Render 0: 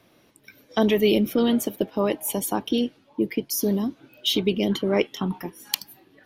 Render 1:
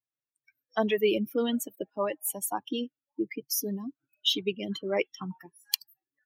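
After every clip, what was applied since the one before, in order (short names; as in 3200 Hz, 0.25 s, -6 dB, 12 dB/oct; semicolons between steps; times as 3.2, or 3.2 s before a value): per-bin expansion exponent 2; HPF 370 Hz 6 dB/oct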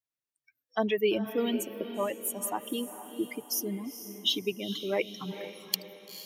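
diffused feedback echo 0.46 s, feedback 47%, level -11 dB; gain -1.5 dB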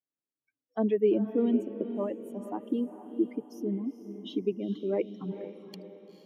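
band-pass 280 Hz, Q 1.4; gain +6 dB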